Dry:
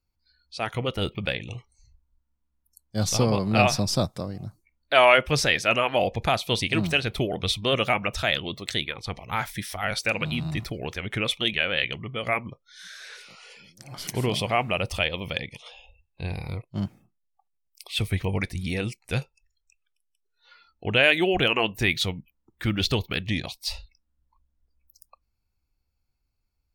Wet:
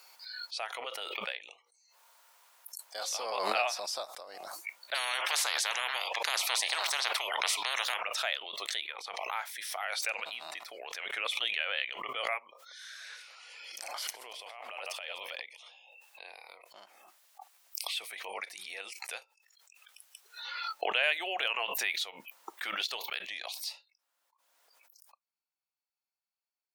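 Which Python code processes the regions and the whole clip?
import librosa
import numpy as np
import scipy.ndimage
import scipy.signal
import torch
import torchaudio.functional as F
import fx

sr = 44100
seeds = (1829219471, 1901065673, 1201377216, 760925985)

y = fx.chain(x, sr, fx.highpass(hz=270.0, slope=12),
    fx.hum_notches(base_hz=60, count=9), at=(1.56, 3.13))
y = fx.chain(y, sr, fx.high_shelf(hz=3500.0, db=-11.0),
    fx.spectral_comp(ratio=10.0), at=(4.94, 8.03))
y = fx.chain(y, sr, fx.reverse_delay(ms=122, wet_db=-12.5),
    fx.over_compress(threshold_db=-31.0, ratio=-0.5), at=(12.5, 15.42))
y = scipy.signal.sosfilt(scipy.signal.butter(4, 630.0, 'highpass', fs=sr, output='sos'), y)
y = fx.pre_swell(y, sr, db_per_s=26.0)
y = y * 10.0 ** (-9.0 / 20.0)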